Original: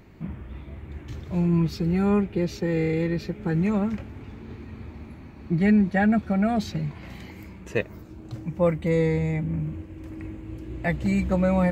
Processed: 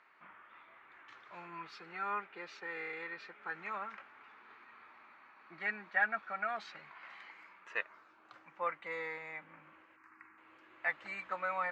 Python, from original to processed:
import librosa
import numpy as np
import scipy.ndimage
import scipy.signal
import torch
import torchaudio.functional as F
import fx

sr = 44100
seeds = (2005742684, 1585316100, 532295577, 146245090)

y = fx.ladder_bandpass(x, sr, hz=1500.0, resonance_pct=45)
y = fx.fixed_phaser(y, sr, hz=1400.0, stages=4, at=(9.96, 10.38))
y = y * 10.0 ** (7.0 / 20.0)